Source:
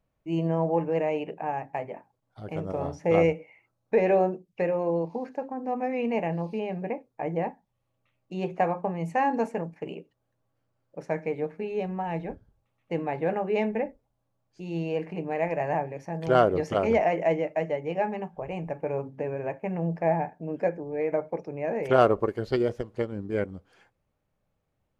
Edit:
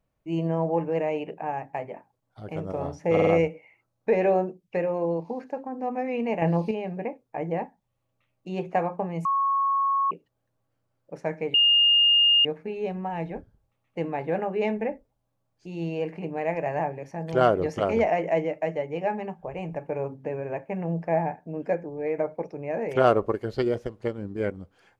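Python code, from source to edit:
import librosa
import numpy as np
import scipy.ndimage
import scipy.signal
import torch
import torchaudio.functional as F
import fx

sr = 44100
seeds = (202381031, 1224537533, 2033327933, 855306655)

y = fx.edit(x, sr, fx.stutter(start_s=3.12, slice_s=0.05, count=4),
    fx.clip_gain(start_s=6.27, length_s=0.29, db=7.0),
    fx.bleep(start_s=9.1, length_s=0.86, hz=1100.0, db=-20.5),
    fx.insert_tone(at_s=11.39, length_s=0.91, hz=2830.0, db=-15.5), tone=tone)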